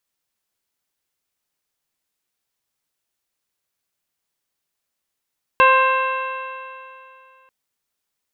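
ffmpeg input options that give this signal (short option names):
-f lavfi -i "aevalsrc='0.15*pow(10,-3*t/2.6)*sin(2*PI*522.55*t)+0.299*pow(10,-3*t/2.6)*sin(2*PI*1048.38*t)+0.15*pow(10,-3*t/2.6)*sin(2*PI*1580.73*t)+0.0501*pow(10,-3*t/2.6)*sin(2*PI*2122.79*t)+0.15*pow(10,-3*t/2.6)*sin(2*PI*2677.64*t)+0.0168*pow(10,-3*t/2.6)*sin(2*PI*3248.23*t)+0.0168*pow(10,-3*t/2.6)*sin(2*PI*3837.4*t)':d=1.89:s=44100"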